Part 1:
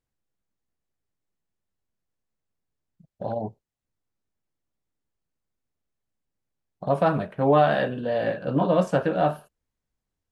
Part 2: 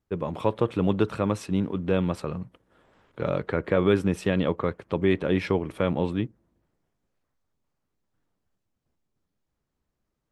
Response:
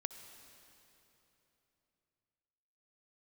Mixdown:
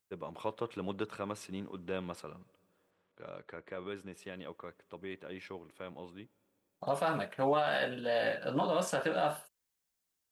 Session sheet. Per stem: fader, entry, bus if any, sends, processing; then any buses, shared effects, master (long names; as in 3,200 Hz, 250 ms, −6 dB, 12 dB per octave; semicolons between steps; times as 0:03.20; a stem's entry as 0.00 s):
−3.5 dB, 0.00 s, muted 0:02.91–0:04.15, no send, no processing
0:02.17 −9.5 dB → 0:02.66 −17 dB, 0.00 s, send −16 dB, high-shelf EQ 2,500 Hz −9 dB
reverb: on, RT60 3.4 s, pre-delay 57 ms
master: spectral tilt +3.5 dB per octave; brickwall limiter −21 dBFS, peak gain reduction 9 dB